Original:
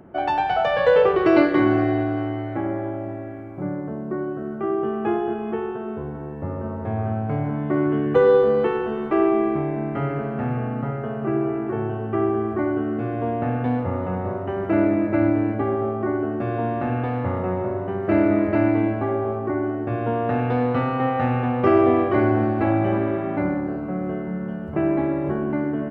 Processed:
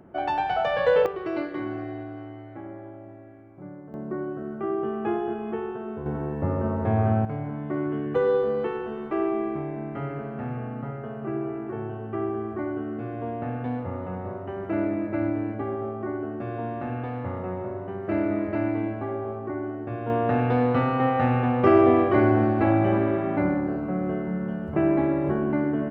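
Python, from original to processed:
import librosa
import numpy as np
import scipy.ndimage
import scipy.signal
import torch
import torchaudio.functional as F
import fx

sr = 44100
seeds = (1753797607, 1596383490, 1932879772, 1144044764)

y = fx.gain(x, sr, db=fx.steps((0.0, -4.0), (1.06, -13.5), (3.94, -4.0), (6.06, 3.0), (7.25, -7.0), (20.1, -0.5)))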